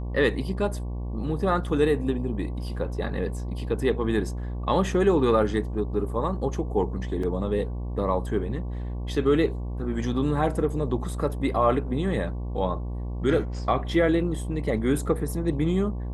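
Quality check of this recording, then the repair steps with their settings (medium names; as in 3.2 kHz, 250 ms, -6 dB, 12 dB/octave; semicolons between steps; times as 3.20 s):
buzz 60 Hz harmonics 19 -31 dBFS
7.23 s: dropout 4.2 ms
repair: de-hum 60 Hz, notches 19; interpolate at 7.23 s, 4.2 ms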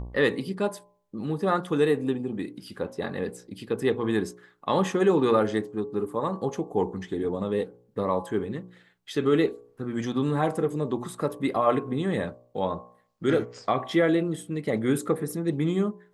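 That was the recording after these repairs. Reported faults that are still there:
nothing left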